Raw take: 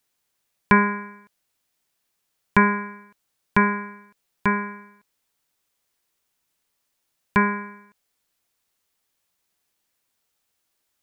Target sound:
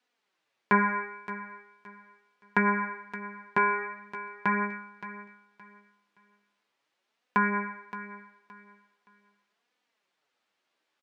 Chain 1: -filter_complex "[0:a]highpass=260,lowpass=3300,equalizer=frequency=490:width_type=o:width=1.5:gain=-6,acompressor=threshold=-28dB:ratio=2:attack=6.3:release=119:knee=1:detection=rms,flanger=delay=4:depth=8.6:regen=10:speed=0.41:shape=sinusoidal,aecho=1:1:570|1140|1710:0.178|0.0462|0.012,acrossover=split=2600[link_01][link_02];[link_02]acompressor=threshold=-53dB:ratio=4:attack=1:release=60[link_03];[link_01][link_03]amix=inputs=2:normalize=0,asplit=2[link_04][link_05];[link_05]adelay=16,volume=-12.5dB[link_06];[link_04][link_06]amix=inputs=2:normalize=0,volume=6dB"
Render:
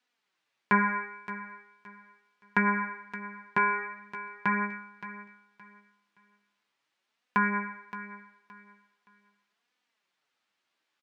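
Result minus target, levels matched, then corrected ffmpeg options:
500 Hz band −4.0 dB
-filter_complex "[0:a]highpass=260,lowpass=3300,acompressor=threshold=-28dB:ratio=2:attack=6.3:release=119:knee=1:detection=rms,flanger=delay=4:depth=8.6:regen=10:speed=0.41:shape=sinusoidal,aecho=1:1:570|1140|1710:0.178|0.0462|0.012,acrossover=split=2600[link_01][link_02];[link_02]acompressor=threshold=-53dB:ratio=4:attack=1:release=60[link_03];[link_01][link_03]amix=inputs=2:normalize=0,asplit=2[link_04][link_05];[link_05]adelay=16,volume=-12.5dB[link_06];[link_04][link_06]amix=inputs=2:normalize=0,volume=6dB"

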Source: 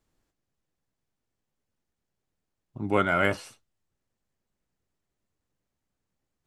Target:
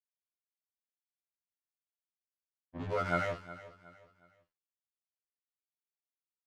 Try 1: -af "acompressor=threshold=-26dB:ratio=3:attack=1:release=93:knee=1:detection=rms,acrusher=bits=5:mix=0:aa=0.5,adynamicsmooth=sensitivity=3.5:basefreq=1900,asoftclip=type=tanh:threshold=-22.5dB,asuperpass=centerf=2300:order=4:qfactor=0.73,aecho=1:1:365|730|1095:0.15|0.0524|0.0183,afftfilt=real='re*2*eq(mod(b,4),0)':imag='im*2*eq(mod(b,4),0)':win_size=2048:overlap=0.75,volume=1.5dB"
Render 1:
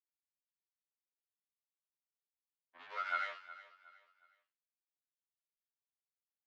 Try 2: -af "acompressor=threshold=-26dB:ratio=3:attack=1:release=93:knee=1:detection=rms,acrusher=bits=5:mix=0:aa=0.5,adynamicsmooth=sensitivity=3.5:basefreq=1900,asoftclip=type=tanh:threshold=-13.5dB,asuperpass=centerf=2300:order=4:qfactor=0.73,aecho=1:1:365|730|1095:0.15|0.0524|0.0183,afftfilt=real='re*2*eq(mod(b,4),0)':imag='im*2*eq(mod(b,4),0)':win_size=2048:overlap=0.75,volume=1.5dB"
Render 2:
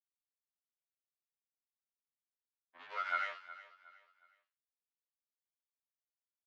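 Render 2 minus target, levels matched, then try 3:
2,000 Hz band +3.0 dB
-af "acompressor=threshold=-26dB:ratio=3:attack=1:release=93:knee=1:detection=rms,acrusher=bits=5:mix=0:aa=0.5,adynamicsmooth=sensitivity=3.5:basefreq=1900,asoftclip=type=tanh:threshold=-13.5dB,aecho=1:1:365|730|1095:0.15|0.0524|0.0183,afftfilt=real='re*2*eq(mod(b,4),0)':imag='im*2*eq(mod(b,4),0)':win_size=2048:overlap=0.75,volume=1.5dB"

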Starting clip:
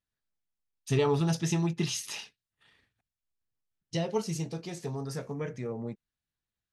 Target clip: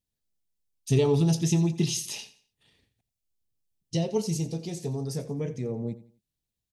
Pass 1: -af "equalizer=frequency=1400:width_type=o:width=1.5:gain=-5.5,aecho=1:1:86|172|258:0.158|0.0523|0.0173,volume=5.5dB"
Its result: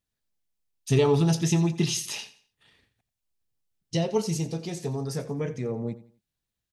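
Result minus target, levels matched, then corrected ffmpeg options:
1,000 Hz band +4.5 dB
-af "equalizer=frequency=1400:width_type=o:width=1.5:gain=-16,aecho=1:1:86|172|258:0.158|0.0523|0.0173,volume=5.5dB"

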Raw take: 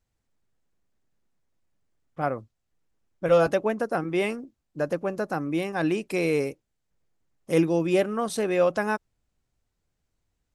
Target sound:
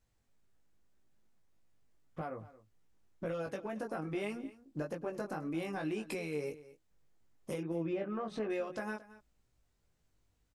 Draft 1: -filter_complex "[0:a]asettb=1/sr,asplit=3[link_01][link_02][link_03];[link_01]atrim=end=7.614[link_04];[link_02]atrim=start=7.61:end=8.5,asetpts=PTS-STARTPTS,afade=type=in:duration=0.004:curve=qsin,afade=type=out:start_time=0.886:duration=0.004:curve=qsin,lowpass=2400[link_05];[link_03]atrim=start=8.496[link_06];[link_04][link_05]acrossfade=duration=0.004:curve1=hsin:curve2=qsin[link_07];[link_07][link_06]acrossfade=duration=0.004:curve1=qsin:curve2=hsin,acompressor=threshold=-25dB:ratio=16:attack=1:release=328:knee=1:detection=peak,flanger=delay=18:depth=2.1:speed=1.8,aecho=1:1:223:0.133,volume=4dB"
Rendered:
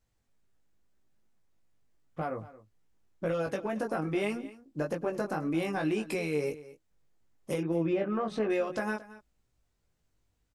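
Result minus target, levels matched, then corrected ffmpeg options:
downward compressor: peak gain reduction −7 dB
-filter_complex "[0:a]asettb=1/sr,asplit=3[link_01][link_02][link_03];[link_01]atrim=end=7.614[link_04];[link_02]atrim=start=7.61:end=8.5,asetpts=PTS-STARTPTS,afade=type=in:duration=0.004:curve=qsin,afade=type=out:start_time=0.886:duration=0.004:curve=qsin,lowpass=2400[link_05];[link_03]atrim=start=8.496[link_06];[link_04][link_05]acrossfade=duration=0.004:curve1=hsin:curve2=qsin[link_07];[link_07][link_06]acrossfade=duration=0.004:curve1=qsin:curve2=hsin,acompressor=threshold=-32.5dB:ratio=16:attack=1:release=328:knee=1:detection=peak,flanger=delay=18:depth=2.1:speed=1.8,aecho=1:1:223:0.133,volume=4dB"

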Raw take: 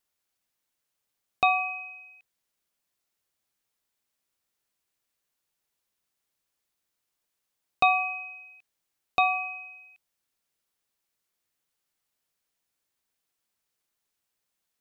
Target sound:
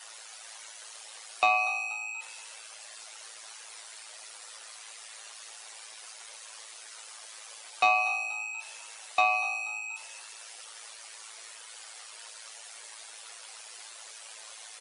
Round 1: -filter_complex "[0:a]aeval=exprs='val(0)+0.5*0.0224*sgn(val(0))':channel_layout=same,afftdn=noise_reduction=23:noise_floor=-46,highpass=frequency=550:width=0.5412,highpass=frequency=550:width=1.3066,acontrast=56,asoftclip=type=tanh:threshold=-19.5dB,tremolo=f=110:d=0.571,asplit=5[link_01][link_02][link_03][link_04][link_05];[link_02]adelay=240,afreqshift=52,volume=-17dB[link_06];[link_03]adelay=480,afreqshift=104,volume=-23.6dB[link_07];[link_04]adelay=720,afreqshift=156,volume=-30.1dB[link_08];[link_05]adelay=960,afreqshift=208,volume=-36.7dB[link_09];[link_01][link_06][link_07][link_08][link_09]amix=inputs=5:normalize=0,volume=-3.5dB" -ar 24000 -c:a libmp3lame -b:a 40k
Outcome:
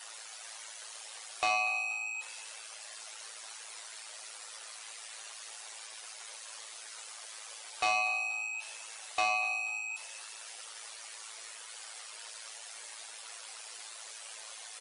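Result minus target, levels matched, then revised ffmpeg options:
soft clipping: distortion +14 dB
-filter_complex "[0:a]aeval=exprs='val(0)+0.5*0.0224*sgn(val(0))':channel_layout=same,afftdn=noise_reduction=23:noise_floor=-46,highpass=frequency=550:width=0.5412,highpass=frequency=550:width=1.3066,acontrast=56,asoftclip=type=tanh:threshold=-7.5dB,tremolo=f=110:d=0.571,asplit=5[link_01][link_02][link_03][link_04][link_05];[link_02]adelay=240,afreqshift=52,volume=-17dB[link_06];[link_03]adelay=480,afreqshift=104,volume=-23.6dB[link_07];[link_04]adelay=720,afreqshift=156,volume=-30.1dB[link_08];[link_05]adelay=960,afreqshift=208,volume=-36.7dB[link_09];[link_01][link_06][link_07][link_08][link_09]amix=inputs=5:normalize=0,volume=-3.5dB" -ar 24000 -c:a libmp3lame -b:a 40k

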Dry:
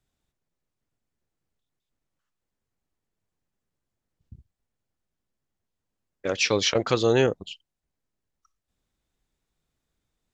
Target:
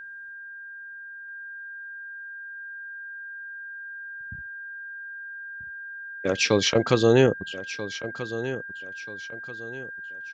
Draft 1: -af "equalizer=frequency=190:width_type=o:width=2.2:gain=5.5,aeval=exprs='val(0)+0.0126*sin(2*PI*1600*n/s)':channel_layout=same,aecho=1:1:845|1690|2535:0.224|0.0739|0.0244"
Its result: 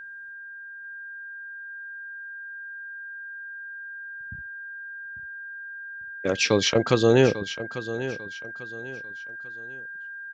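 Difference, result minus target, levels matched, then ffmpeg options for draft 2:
echo 440 ms early
-af "equalizer=frequency=190:width_type=o:width=2.2:gain=5.5,aeval=exprs='val(0)+0.0126*sin(2*PI*1600*n/s)':channel_layout=same,aecho=1:1:1285|2570|3855:0.224|0.0739|0.0244"

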